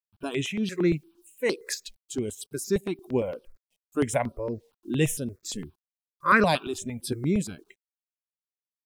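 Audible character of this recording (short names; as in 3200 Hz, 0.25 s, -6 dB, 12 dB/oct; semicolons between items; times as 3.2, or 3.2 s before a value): a quantiser's noise floor 12-bit, dither none; tremolo triangle 1.3 Hz, depth 45%; notches that jump at a steady rate 8.7 Hz 350–7000 Hz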